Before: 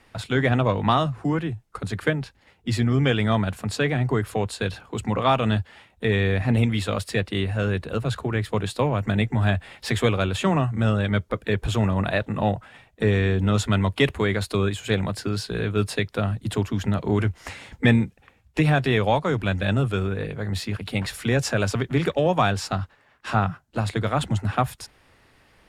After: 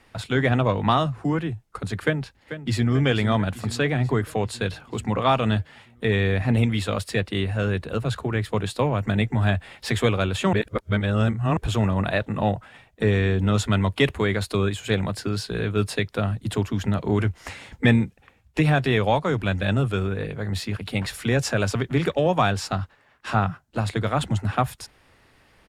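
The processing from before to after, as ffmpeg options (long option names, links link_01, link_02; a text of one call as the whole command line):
ffmpeg -i in.wav -filter_complex "[0:a]asplit=2[link_01][link_02];[link_02]afade=type=in:start_time=2.04:duration=0.01,afade=type=out:start_time=2.92:duration=0.01,aecho=0:1:440|880|1320|1760|2200|2640|3080|3520:0.266073|0.172947|0.112416|0.0730702|0.0474956|0.0308721|0.0200669|0.0130435[link_03];[link_01][link_03]amix=inputs=2:normalize=0,asplit=3[link_04][link_05][link_06];[link_04]atrim=end=10.532[link_07];[link_05]atrim=start=10.528:end=11.572,asetpts=PTS-STARTPTS,areverse[link_08];[link_06]atrim=start=11.568[link_09];[link_07][link_08]acrossfade=duration=0.004:curve1=hsin:curve2=hsin[link_10];[link_10][link_09]acrossfade=duration=0.004:curve1=hsin:curve2=hsin" out.wav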